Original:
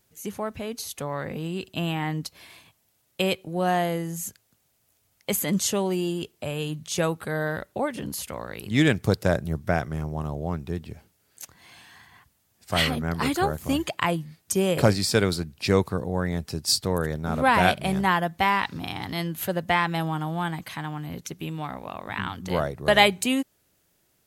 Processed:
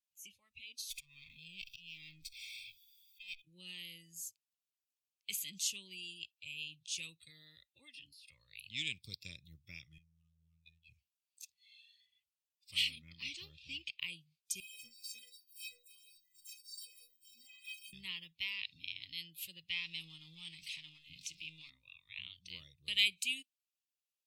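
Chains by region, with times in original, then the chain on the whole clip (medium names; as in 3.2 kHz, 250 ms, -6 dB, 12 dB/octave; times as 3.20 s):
0.90–3.42 s: comb filter that takes the minimum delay 0.87 ms + slow attack 778 ms + power-law waveshaper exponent 0.5
7.30–8.28 s: de-esser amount 85% + bass shelf 280 Hz -5.5 dB
9.98–10.88 s: compression 5:1, threshold -36 dBFS + robot voice 81.9 Hz
13.04–14.06 s: careless resampling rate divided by 3×, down none, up hold + distance through air 52 m
14.60–17.93 s: zero-crossing glitches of -17.5 dBFS + square tremolo 2.3 Hz, depth 60%, duty 60% + inharmonic resonator 230 Hz, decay 0.39 s, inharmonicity 0.03
19.70–21.70 s: jump at every zero crossing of -33.5 dBFS + low-pass 11 kHz + hum notches 50/100/150/200/250/300/350 Hz
whole clip: spectral noise reduction 17 dB; elliptic high-pass 2.5 kHz, stop band 40 dB; tilt EQ -3.5 dB/octave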